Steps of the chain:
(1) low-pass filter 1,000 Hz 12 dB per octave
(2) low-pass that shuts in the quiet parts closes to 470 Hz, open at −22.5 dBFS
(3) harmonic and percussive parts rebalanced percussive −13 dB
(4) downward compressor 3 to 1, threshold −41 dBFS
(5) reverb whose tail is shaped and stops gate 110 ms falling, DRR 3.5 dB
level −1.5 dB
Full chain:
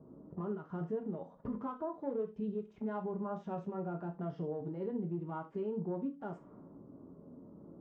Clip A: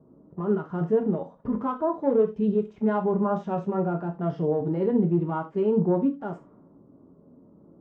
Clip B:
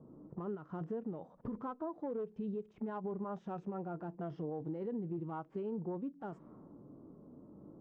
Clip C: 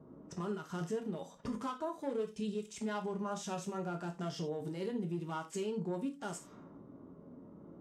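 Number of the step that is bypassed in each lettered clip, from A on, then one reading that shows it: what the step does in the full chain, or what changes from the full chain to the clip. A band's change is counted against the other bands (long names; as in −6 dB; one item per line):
4, average gain reduction 10.0 dB
5, change in crest factor −2.5 dB
1, 2 kHz band +7.5 dB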